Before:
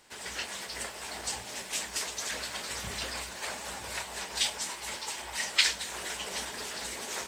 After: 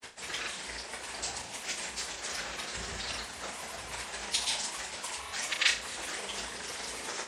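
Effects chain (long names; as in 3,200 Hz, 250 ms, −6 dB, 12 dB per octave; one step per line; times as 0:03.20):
Chebyshev low-pass filter 11,000 Hz, order 10
granular cloud, pitch spread up and down by 3 semitones
on a send: flutter between parallel walls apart 6 metres, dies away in 0.31 s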